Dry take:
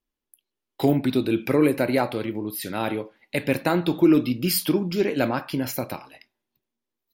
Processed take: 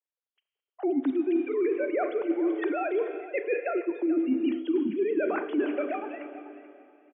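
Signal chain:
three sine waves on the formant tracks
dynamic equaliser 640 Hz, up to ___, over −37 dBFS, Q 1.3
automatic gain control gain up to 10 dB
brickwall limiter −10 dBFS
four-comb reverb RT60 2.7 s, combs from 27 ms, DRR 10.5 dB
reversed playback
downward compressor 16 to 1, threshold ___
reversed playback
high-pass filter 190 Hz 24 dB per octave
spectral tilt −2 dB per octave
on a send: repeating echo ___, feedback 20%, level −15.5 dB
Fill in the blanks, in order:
−4 dB, −26 dBFS, 434 ms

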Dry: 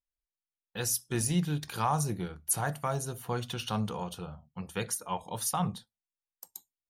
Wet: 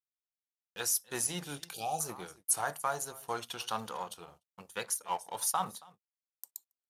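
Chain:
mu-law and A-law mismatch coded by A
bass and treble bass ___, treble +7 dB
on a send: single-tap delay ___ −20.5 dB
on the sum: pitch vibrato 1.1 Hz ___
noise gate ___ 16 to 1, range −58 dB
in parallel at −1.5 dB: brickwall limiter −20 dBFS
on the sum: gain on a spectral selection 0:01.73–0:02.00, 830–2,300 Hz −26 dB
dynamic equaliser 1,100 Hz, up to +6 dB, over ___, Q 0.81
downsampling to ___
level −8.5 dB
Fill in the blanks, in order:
−14 dB, 284 ms, 66 cents, −55 dBFS, −42 dBFS, 32,000 Hz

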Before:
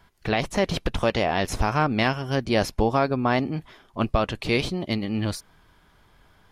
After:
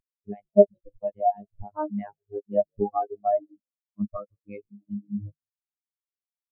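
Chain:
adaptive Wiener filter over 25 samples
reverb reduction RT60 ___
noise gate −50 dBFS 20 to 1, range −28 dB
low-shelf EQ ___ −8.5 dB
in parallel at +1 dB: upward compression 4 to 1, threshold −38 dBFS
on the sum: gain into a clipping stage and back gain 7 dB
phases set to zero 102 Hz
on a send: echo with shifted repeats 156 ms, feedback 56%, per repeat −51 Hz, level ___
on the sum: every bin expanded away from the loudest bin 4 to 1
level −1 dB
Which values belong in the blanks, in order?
0.92 s, 160 Hz, −16 dB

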